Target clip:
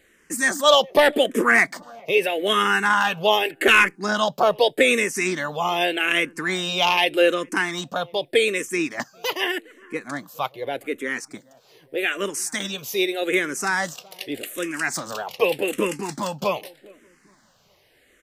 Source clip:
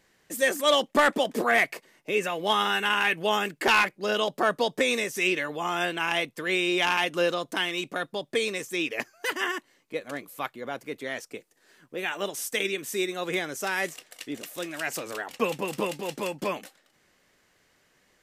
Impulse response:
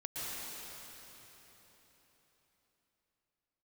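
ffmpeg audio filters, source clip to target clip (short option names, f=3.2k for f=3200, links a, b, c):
-filter_complex "[0:a]asplit=2[a][b];[b]adelay=411,lowpass=f=920:p=1,volume=-22dB,asplit=2[c][d];[d]adelay=411,lowpass=f=920:p=1,volume=0.4,asplit=2[e][f];[f]adelay=411,lowpass=f=920:p=1,volume=0.4[g];[a][c][e][g]amix=inputs=4:normalize=0,asplit=2[h][i];[i]afreqshift=-0.83[j];[h][j]amix=inputs=2:normalize=1,volume=8.5dB"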